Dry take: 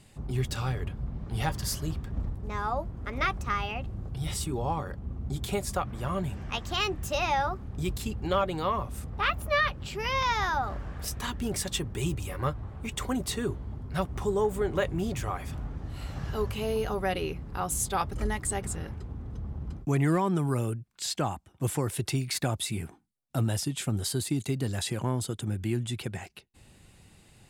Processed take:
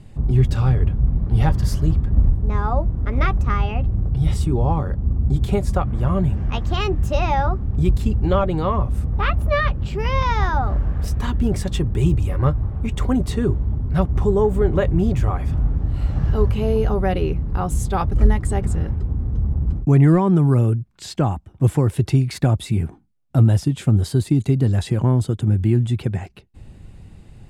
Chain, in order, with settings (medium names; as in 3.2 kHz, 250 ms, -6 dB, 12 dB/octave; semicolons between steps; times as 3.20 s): tilt EQ -3 dB/octave; trim +5 dB